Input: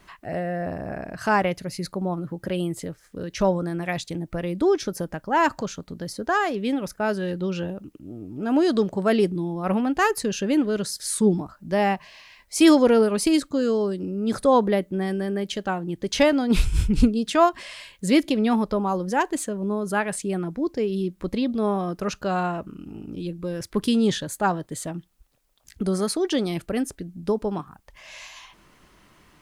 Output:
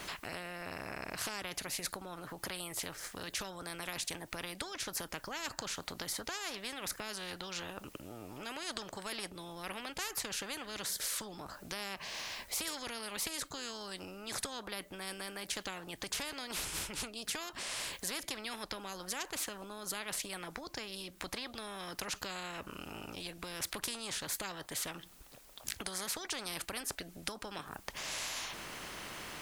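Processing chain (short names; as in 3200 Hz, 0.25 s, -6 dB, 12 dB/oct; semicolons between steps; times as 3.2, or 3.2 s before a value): low shelf 100 Hz -11.5 dB; compressor 2.5:1, threshold -36 dBFS, peak gain reduction 16 dB; spectral compressor 4:1; gain +8 dB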